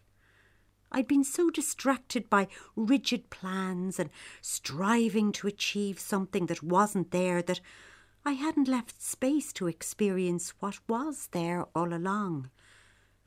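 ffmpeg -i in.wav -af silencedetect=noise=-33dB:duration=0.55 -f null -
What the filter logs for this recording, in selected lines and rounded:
silence_start: 0.00
silence_end: 0.94 | silence_duration: 0.94
silence_start: 7.57
silence_end: 8.26 | silence_duration: 0.69
silence_start: 12.41
silence_end: 13.26 | silence_duration: 0.86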